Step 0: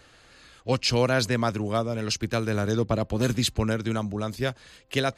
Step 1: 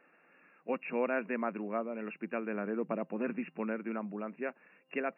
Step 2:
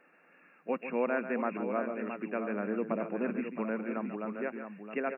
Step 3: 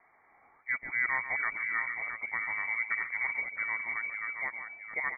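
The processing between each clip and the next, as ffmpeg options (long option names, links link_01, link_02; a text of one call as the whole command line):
ffmpeg -i in.wav -af "afftfilt=real='re*between(b*sr/4096,160,2800)':imag='im*between(b*sr/4096,160,2800)':win_size=4096:overlap=0.75,volume=-8.5dB" out.wav
ffmpeg -i in.wav -filter_complex "[0:a]acrossover=split=2500[link_01][link_02];[link_02]acompressor=threshold=-54dB:ratio=4:attack=1:release=60[link_03];[link_01][link_03]amix=inputs=2:normalize=0,aecho=1:1:141|668:0.299|0.398,volume=1.5dB" out.wav
ffmpeg -i in.wav -af "lowpass=frequency=2100:width_type=q:width=0.5098,lowpass=frequency=2100:width_type=q:width=0.6013,lowpass=frequency=2100:width_type=q:width=0.9,lowpass=frequency=2100:width_type=q:width=2.563,afreqshift=-2500" out.wav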